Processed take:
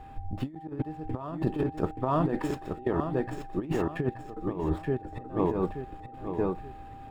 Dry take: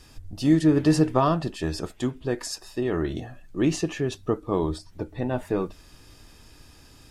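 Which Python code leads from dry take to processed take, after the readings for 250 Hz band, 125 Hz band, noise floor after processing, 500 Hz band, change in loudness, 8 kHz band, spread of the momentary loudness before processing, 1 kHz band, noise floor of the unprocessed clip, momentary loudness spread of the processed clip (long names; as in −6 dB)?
−6.5 dB, −4.5 dB, −45 dBFS, −3.5 dB, −6.0 dB, below −15 dB, 13 LU, −2.5 dB, −52 dBFS, 10 LU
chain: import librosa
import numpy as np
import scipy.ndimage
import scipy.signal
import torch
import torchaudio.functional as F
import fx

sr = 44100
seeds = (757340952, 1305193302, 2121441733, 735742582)

y = scipy.signal.medfilt(x, 9)
y = fx.notch(y, sr, hz=6100.0, q=7.0)
y = fx.step_gate(y, sr, bpm=110, pattern='xxxx.x..', floor_db=-24.0, edge_ms=4.5)
y = y + 10.0 ** (-49.0 / 20.0) * np.sin(2.0 * np.pi * 790.0 * np.arange(len(y)) / sr)
y = fx.high_shelf(y, sr, hz=3000.0, db=-12.0)
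y = fx.echo_feedback(y, sr, ms=877, feedback_pct=35, wet_db=-6.0)
y = fx.dynamic_eq(y, sr, hz=880.0, q=5.3, threshold_db=-49.0, ratio=4.0, max_db=5)
y = fx.over_compress(y, sr, threshold_db=-27.0, ratio=-0.5)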